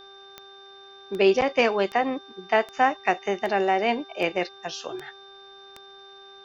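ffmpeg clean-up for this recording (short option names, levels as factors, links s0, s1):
-af "adeclick=t=4,bandreject=f=393.2:t=h:w=4,bandreject=f=786.4:t=h:w=4,bandreject=f=1179.6:t=h:w=4,bandreject=f=1572.8:t=h:w=4,bandreject=f=3600:w=30,agate=range=0.0891:threshold=0.0112"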